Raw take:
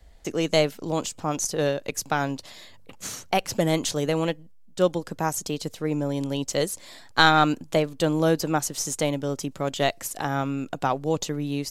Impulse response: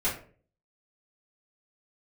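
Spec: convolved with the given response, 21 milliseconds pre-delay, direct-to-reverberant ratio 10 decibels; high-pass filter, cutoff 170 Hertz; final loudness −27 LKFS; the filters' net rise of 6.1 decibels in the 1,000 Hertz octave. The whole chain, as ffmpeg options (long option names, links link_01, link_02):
-filter_complex "[0:a]highpass=170,equalizer=frequency=1000:width_type=o:gain=8.5,asplit=2[link_01][link_02];[1:a]atrim=start_sample=2205,adelay=21[link_03];[link_02][link_03]afir=irnorm=-1:irlink=0,volume=-19dB[link_04];[link_01][link_04]amix=inputs=2:normalize=0,volume=-4.5dB"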